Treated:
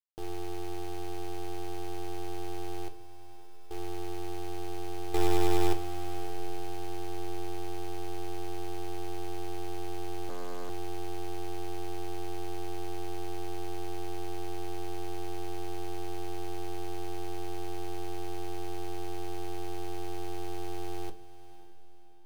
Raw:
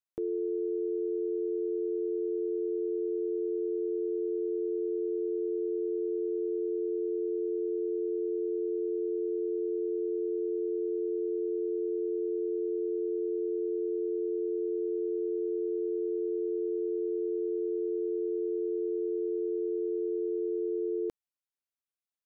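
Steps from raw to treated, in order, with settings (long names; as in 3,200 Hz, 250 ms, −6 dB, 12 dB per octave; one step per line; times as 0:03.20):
0:05.14–0:05.73: parametric band 410 Hz +12.5 dB 1.7 octaves
log-companded quantiser 4 bits
0:02.88–0:03.71: stiff-string resonator 96 Hz, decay 0.81 s, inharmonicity 0.03
half-wave rectification
feedback delay with all-pass diffusion 553 ms, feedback 44%, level −15.5 dB
convolution reverb, pre-delay 6 ms, DRR 8 dB
0:10.29–0:10.70: highs frequency-modulated by the lows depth 0.99 ms
level −5 dB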